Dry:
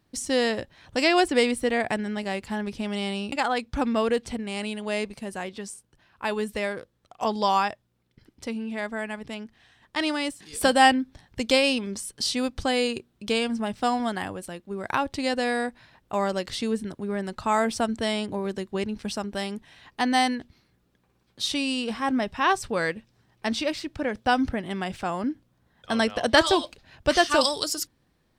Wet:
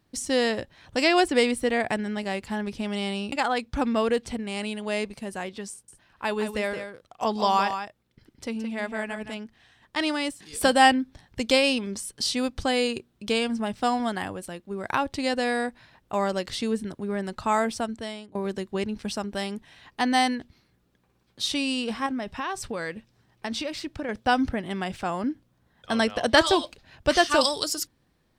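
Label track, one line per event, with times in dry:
5.710000	9.370000	single-tap delay 170 ms −8.5 dB
17.510000	18.350000	fade out, to −22 dB
22.060000	24.090000	downward compressor 10 to 1, threshold −26 dBFS

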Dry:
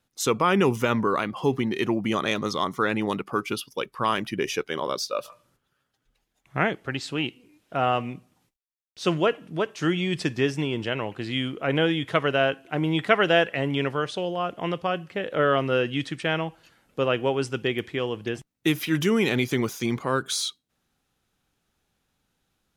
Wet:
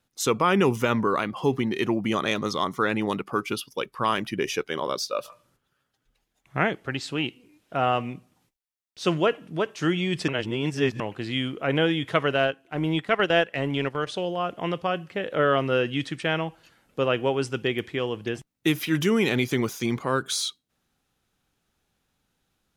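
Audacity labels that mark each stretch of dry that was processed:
10.280000	11.000000	reverse
12.340000	14.070000	transient designer attack −5 dB, sustain −9 dB

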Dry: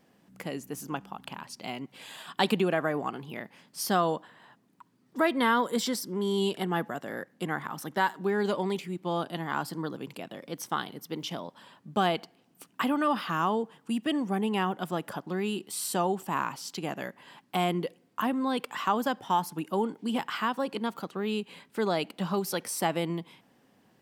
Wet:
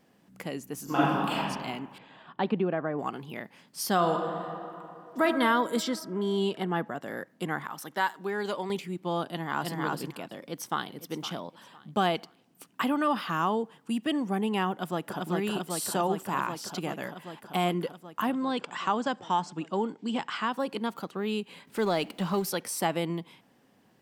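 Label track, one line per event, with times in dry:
0.840000	1.380000	thrown reverb, RT60 1.5 s, DRR −12 dB
1.980000	2.990000	head-to-tape spacing loss at 10 kHz 40 dB
3.930000	5.240000	thrown reverb, RT60 2.9 s, DRR 3 dB
5.820000	7.010000	high-shelf EQ 7,900 Hz → 5,200 Hz −12 dB
7.650000	8.700000	low-shelf EQ 370 Hz −9.5 dB
9.270000	9.780000	delay throw 320 ms, feedback 10%, level −1 dB
10.390000	10.890000	delay throw 510 ms, feedback 30%, level −13.5 dB
14.710000	15.190000	delay throw 390 ms, feedback 80%, level −1.5 dB
18.320000	20.520000	elliptic low-pass filter 8,000 Hz
21.670000	22.500000	mu-law and A-law mismatch coded by mu

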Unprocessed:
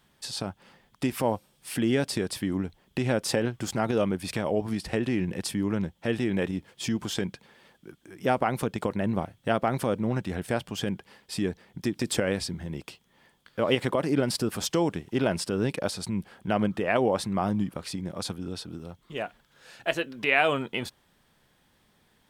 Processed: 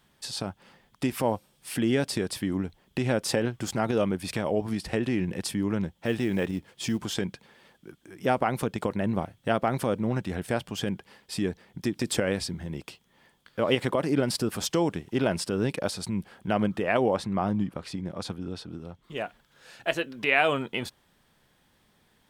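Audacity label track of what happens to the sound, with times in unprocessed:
5.930000	6.990000	floating-point word with a short mantissa of 4 bits
17.160000	19.040000	low-pass filter 3,600 Hz 6 dB per octave

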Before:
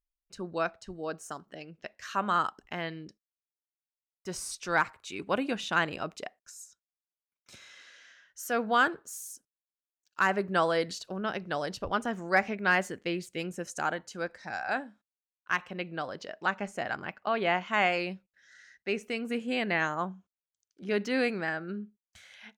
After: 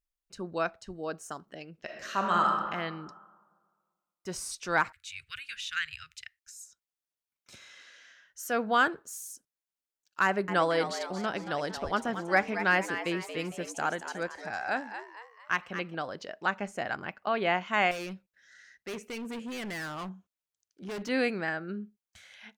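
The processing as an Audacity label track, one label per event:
1.770000	2.470000	thrown reverb, RT60 1.6 s, DRR 0.5 dB
4.920000	6.610000	inverse Chebyshev band-stop filter 180–950 Hz
10.250000	15.950000	echo with shifted repeats 228 ms, feedback 44%, per repeat +110 Hz, level −10 dB
17.910000	21.090000	gain into a clipping stage and back gain 35 dB

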